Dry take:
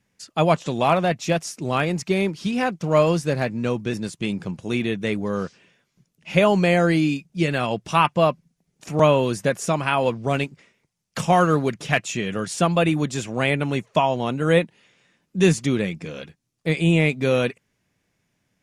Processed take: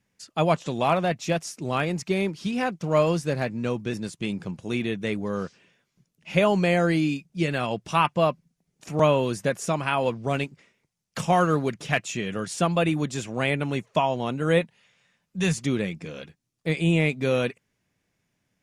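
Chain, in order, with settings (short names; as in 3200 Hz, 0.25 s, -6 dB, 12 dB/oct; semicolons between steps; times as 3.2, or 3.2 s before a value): 14.61–15.57 bell 320 Hz -14 dB 0.67 oct; gain -3.5 dB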